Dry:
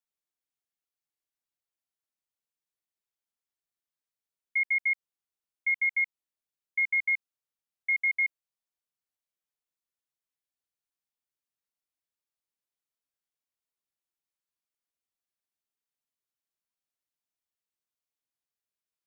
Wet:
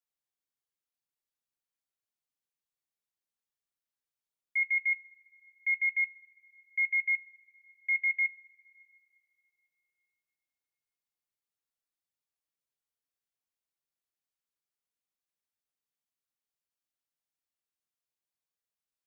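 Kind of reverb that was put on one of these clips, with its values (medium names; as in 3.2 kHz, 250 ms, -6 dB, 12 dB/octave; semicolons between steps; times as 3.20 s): two-slope reverb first 0.2 s, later 2.9 s, from -18 dB, DRR 12.5 dB; trim -3 dB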